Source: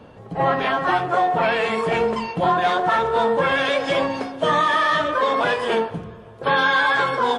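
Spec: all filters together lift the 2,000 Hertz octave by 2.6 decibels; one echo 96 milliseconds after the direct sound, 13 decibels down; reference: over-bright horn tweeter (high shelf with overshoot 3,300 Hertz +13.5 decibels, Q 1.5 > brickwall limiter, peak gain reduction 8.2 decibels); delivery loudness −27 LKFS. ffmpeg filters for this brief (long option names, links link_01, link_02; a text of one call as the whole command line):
ffmpeg -i in.wav -af "equalizer=frequency=2000:width_type=o:gain=6.5,highshelf=frequency=3300:width_type=q:width=1.5:gain=13.5,aecho=1:1:96:0.224,volume=-6dB,alimiter=limit=-18.5dB:level=0:latency=1" out.wav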